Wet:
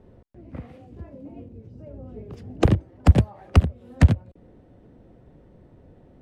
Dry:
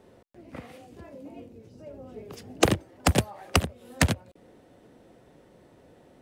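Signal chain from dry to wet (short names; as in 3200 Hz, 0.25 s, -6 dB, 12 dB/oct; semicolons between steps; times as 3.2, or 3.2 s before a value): RIAA curve playback; gain -3 dB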